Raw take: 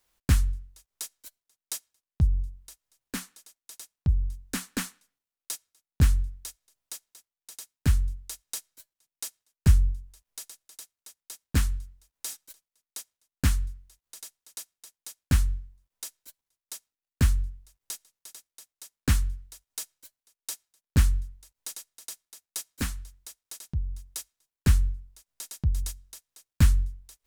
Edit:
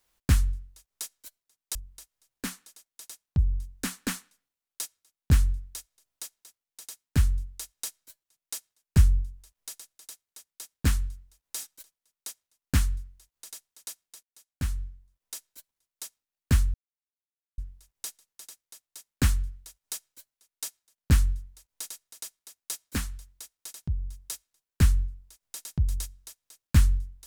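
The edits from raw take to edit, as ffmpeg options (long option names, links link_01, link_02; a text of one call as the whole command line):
ffmpeg -i in.wav -filter_complex "[0:a]asplit=4[link_01][link_02][link_03][link_04];[link_01]atrim=end=1.752[link_05];[link_02]atrim=start=2.448:end=14.93,asetpts=PTS-STARTPTS,afade=type=out:start_time=12.478:duration=0.004:curve=hsin:silence=0.0944061[link_06];[link_03]atrim=start=14.93:end=17.44,asetpts=PTS-STARTPTS,afade=type=in:duration=1.22:silence=0.0944061,afade=type=out:start_time=2.506:duration=0.004:curve=hsin,apad=pad_dur=0.84[link_07];[link_04]atrim=start=17.44,asetpts=PTS-STARTPTS,afade=type=in:duration=0.004:curve=hsin[link_08];[link_06][link_07][link_08]concat=n=3:v=0:a=1[link_09];[link_05][link_09]acrossfade=duration=0.004:curve1=hsin:curve2=hsin" out.wav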